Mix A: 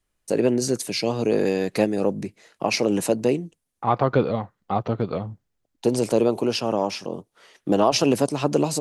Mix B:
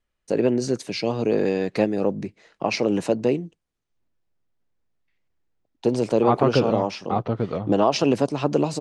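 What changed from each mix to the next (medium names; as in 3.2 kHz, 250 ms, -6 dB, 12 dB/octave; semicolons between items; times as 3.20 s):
second voice: entry +2.40 s; master: add distance through air 99 m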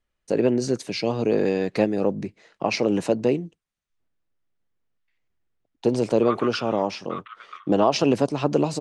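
second voice: add Chebyshev band-pass 1.1–3.7 kHz, order 5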